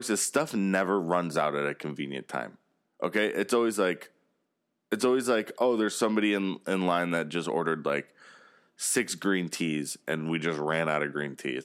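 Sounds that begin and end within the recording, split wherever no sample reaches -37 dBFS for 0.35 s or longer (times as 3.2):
3.02–4.03
4.92–8.01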